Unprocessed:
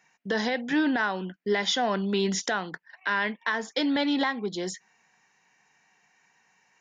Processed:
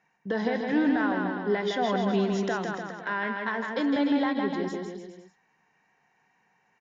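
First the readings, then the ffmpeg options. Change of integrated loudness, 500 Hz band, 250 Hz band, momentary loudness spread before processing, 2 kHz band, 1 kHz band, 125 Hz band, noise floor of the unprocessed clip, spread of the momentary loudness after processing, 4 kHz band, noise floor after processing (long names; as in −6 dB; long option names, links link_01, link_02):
−0.5 dB, +1.5 dB, +2.0 dB, 9 LU, −3.0 dB, 0.0 dB, +2.0 dB, −67 dBFS, 9 LU, −8.5 dB, −70 dBFS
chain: -filter_complex "[0:a]lowpass=frequency=1100:poles=1,asplit=2[link_01][link_02];[link_02]aecho=0:1:160|296|411.6|509.9|593.4:0.631|0.398|0.251|0.158|0.1[link_03];[link_01][link_03]amix=inputs=2:normalize=0"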